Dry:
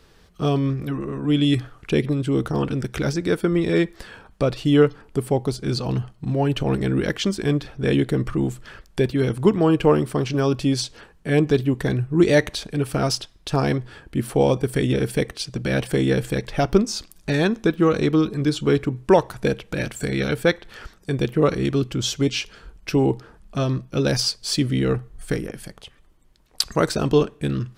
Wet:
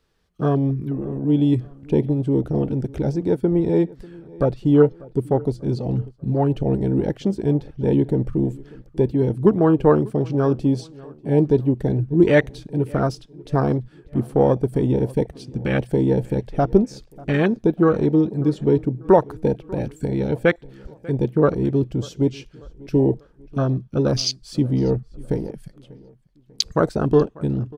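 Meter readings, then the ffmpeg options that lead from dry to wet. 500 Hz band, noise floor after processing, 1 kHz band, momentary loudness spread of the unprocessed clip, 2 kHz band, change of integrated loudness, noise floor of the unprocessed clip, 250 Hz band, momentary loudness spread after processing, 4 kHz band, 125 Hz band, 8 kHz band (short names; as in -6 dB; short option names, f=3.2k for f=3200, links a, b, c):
+1.5 dB, -52 dBFS, +0.5 dB, 9 LU, -4.0 dB, +1.0 dB, -53 dBFS, +1.5 dB, 10 LU, -6.0 dB, +1.5 dB, n/a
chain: -filter_complex "[0:a]afwtdn=0.0562,asplit=2[a][b];[b]adelay=592,lowpass=f=2.9k:p=1,volume=-22dB,asplit=2[c][d];[d]adelay=592,lowpass=f=2.9k:p=1,volume=0.43,asplit=2[e][f];[f]adelay=592,lowpass=f=2.9k:p=1,volume=0.43[g];[a][c][e][g]amix=inputs=4:normalize=0,volume=1.5dB"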